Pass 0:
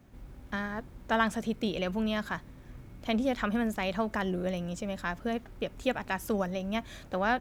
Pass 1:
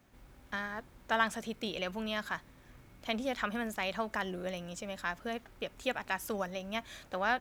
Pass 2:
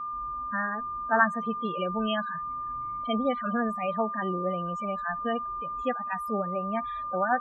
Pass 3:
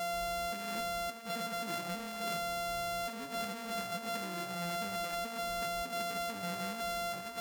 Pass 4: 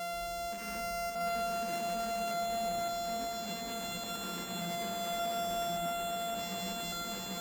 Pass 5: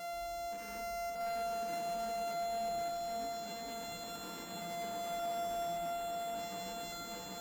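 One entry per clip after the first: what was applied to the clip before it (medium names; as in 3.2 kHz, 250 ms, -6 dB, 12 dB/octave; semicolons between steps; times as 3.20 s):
bass shelf 500 Hz -10.5 dB
loudest bins only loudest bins 16; whistle 1.2 kHz -40 dBFS; harmonic-percussive split percussive -14 dB; trim +8.5 dB
sorted samples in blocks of 64 samples; on a send at -18 dB: reverberation RT60 2.1 s, pre-delay 30 ms; on the sum: compressor with a negative ratio -34 dBFS, ratio -1; trim -4.5 dB
backward echo that repeats 577 ms, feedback 68%, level -1.5 dB; peak limiter -27.5 dBFS, peak gain reduction 6 dB; echo whose repeats swap between lows and highs 132 ms, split 960 Hz, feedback 88%, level -10.5 dB; trim -2 dB
wavefolder -28.5 dBFS; FDN reverb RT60 0.33 s, low-frequency decay 0.8×, high-frequency decay 0.4×, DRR 4 dB; trim -6 dB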